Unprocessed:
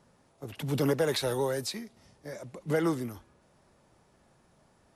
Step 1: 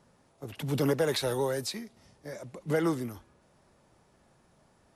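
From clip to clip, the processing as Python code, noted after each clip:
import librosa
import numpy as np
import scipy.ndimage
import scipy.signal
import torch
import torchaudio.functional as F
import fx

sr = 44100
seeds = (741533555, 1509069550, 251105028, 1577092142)

y = x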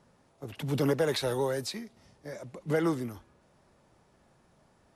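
y = fx.high_shelf(x, sr, hz=7300.0, db=-4.5)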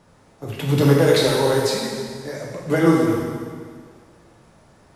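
y = fx.rev_plate(x, sr, seeds[0], rt60_s=1.9, hf_ratio=0.9, predelay_ms=0, drr_db=-3.0)
y = y * librosa.db_to_amplitude(7.5)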